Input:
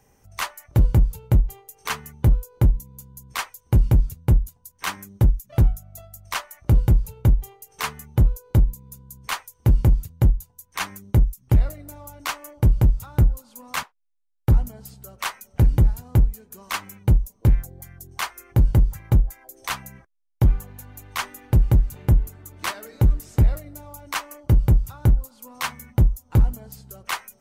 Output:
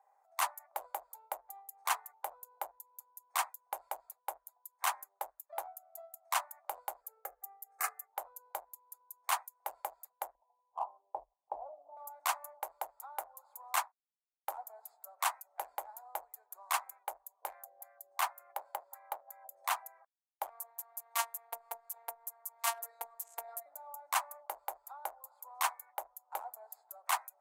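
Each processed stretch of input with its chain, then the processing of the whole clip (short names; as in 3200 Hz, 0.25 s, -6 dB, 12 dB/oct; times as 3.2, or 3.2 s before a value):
7.01–8.13 fixed phaser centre 920 Hz, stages 6 + comb 2.4 ms, depth 59%
10.35–11.97 steep low-pass 1000 Hz 48 dB/oct + low shelf 200 Hz +12 dB
17.53–19.72 HPF 340 Hz + dynamic EQ 8000 Hz, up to -4 dB, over -46 dBFS, Q 0.83 + whine 570 Hz -54 dBFS
20.49–23.66 compressor 2.5:1, threshold -16 dBFS + high shelf 3800 Hz +4.5 dB + robotiser 231 Hz
whole clip: Wiener smoothing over 15 samples; elliptic high-pass 700 Hz, stop band 70 dB; band shelf 2800 Hz -9.5 dB 2.5 oct; gain +1 dB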